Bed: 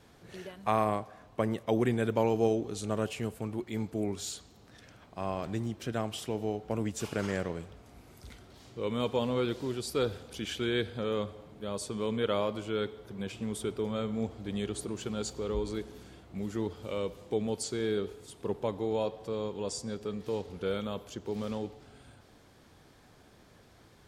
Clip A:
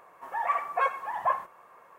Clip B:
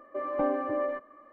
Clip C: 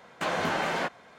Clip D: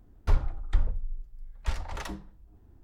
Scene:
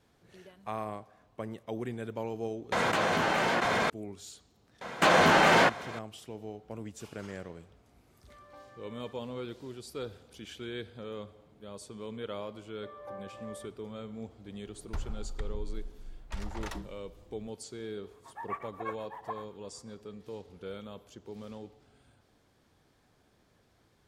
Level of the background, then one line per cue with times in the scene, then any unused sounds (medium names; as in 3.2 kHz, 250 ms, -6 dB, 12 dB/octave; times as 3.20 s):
bed -9 dB
2.72 s: add C -1.5 dB + level flattener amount 100%
4.81 s: add C -11.5 dB + loudness maximiser +23.5 dB
8.14 s: add B -4.5 dB + differentiator
12.68 s: add B -14.5 dB + high-pass 470 Hz 24 dB/octave
14.66 s: add D -2.5 dB + compression, threshold -28 dBFS
18.03 s: add A -9.5 dB + tremolo of two beating tones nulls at 8 Hz